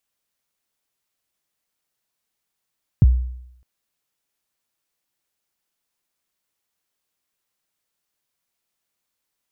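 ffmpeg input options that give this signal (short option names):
-f lavfi -i "aevalsrc='0.501*pow(10,-3*t/0.76)*sin(2*PI*(170*0.029/log(62/170)*(exp(log(62/170)*min(t,0.029)/0.029)-1)+62*max(t-0.029,0)))':d=0.61:s=44100"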